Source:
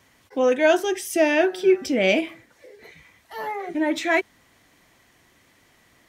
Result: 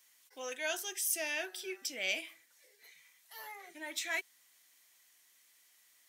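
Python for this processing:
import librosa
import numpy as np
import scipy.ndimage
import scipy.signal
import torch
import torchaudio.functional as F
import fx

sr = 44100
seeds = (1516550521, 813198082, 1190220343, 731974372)

y = np.diff(x, prepend=0.0)
y = y * librosa.db_to_amplitude(-1.5)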